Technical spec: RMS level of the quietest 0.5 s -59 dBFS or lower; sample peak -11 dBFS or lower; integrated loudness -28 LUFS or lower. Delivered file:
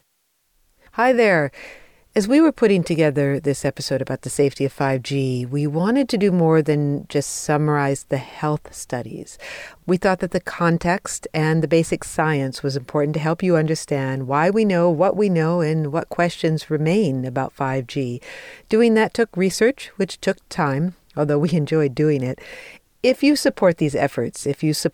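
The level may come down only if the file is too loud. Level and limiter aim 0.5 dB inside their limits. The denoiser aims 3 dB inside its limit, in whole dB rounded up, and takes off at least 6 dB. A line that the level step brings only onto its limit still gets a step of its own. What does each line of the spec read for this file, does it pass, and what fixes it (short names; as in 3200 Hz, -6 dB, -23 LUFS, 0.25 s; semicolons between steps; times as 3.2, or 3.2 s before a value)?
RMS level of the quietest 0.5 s -67 dBFS: OK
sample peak -5.5 dBFS: fail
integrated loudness -20.0 LUFS: fail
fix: gain -8.5 dB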